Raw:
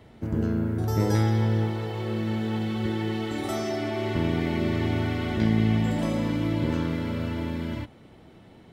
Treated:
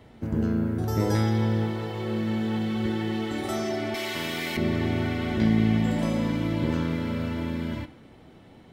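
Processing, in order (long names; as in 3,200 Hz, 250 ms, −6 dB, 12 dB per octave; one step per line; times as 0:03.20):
0:03.94–0:04.57: spectral tilt +4.5 dB per octave
on a send: convolution reverb RT60 1.0 s, pre-delay 3 ms, DRR 10.5 dB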